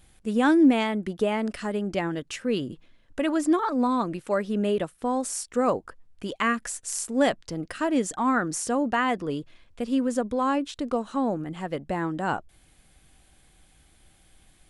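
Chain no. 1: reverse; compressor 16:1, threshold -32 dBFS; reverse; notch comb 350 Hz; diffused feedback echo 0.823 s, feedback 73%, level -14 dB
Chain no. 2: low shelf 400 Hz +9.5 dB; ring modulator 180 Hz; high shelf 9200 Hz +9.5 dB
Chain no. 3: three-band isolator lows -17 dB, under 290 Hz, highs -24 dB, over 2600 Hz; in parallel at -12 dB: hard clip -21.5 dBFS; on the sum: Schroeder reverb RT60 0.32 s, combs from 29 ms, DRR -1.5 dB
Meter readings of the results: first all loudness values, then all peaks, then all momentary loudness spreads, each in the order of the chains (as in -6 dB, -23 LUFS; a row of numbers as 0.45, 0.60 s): -38.0, -25.0, -24.0 LUFS; -21.5, -4.5, -5.5 dBFS; 13, 11, 13 LU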